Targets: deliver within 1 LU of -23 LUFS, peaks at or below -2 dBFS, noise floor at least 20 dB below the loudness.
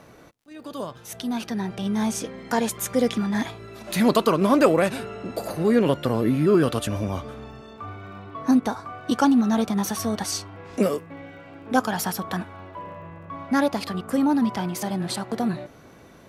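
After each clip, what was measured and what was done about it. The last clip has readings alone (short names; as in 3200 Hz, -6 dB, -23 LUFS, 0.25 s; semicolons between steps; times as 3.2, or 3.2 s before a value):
ticks 45/s; loudness -24.0 LUFS; peak -4.5 dBFS; loudness target -23.0 LUFS
-> de-click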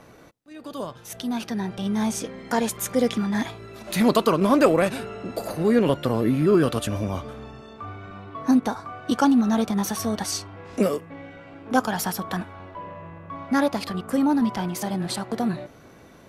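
ticks 0.12/s; loudness -24.0 LUFS; peak -4.5 dBFS; loudness target -23.0 LUFS
-> gain +1 dB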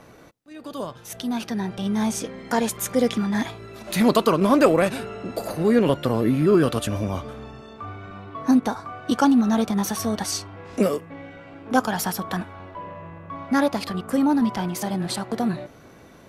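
loudness -23.0 LUFS; peak -3.5 dBFS; noise floor -48 dBFS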